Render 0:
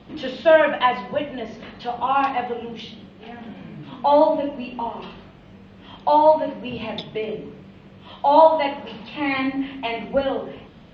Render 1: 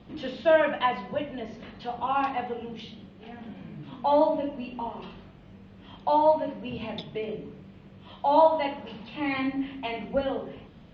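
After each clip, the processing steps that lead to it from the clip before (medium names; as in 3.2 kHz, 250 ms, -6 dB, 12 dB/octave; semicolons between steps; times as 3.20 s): bass shelf 260 Hz +5 dB; trim -7 dB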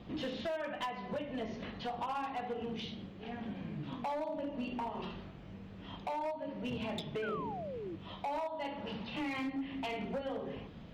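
compression 12:1, threshold -33 dBFS, peak gain reduction 19 dB; overload inside the chain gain 32.5 dB; painted sound fall, 7.22–7.96 s, 310–1600 Hz -42 dBFS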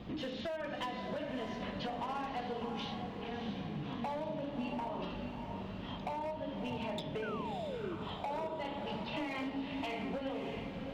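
compression 3:1, threshold -42 dBFS, peak gain reduction 7 dB; on a send: echo that smears into a reverb 637 ms, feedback 50%, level -6 dB; on the sum: trim +3.5 dB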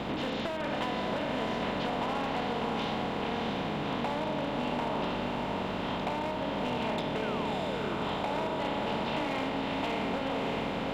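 spectral levelling over time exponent 0.4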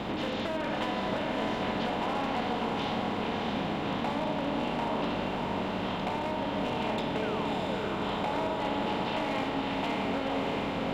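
reverberation RT60 2.8 s, pre-delay 5 ms, DRR 7.5 dB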